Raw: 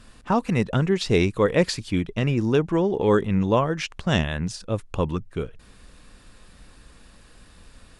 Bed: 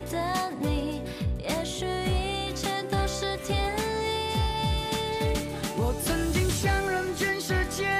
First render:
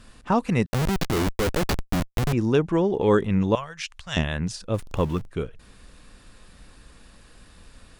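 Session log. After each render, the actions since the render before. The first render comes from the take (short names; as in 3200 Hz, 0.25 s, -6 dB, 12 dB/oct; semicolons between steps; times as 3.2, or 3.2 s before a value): 0.66–2.33 Schmitt trigger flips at -21.5 dBFS; 3.55–4.17 passive tone stack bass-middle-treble 10-0-10; 4.74–5.27 zero-crossing step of -37 dBFS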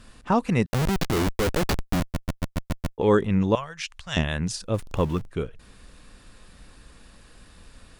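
2 stutter in place 0.14 s, 7 plays; 4.28–4.7 high shelf 5200 Hz +6.5 dB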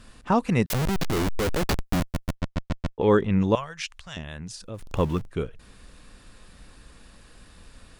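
0.7–1.64 infinite clipping; 2.35–3.38 LPF 5300 Hz; 3.95–4.81 compressor 2:1, threshold -41 dBFS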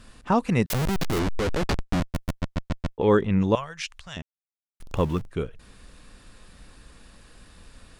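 1.19–2.15 air absorption 53 m; 4.22–4.8 mute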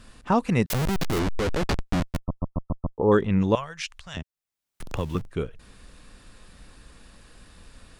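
2.18–3.12 brick-wall FIR low-pass 1300 Hz; 4.14–5.15 three-band squash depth 70%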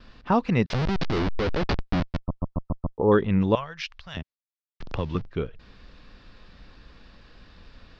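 steep low-pass 5200 Hz 36 dB/oct; gate with hold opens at -43 dBFS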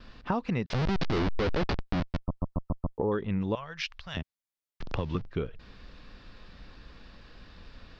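compressor 6:1, threshold -26 dBFS, peak gain reduction 11.5 dB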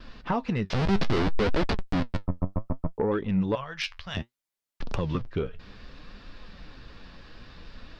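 sine folder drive 4 dB, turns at -14.5 dBFS; flange 0.63 Hz, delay 2.9 ms, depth 8.9 ms, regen +59%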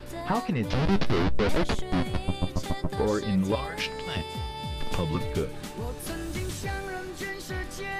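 add bed -7.5 dB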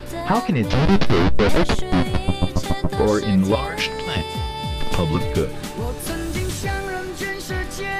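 gain +8 dB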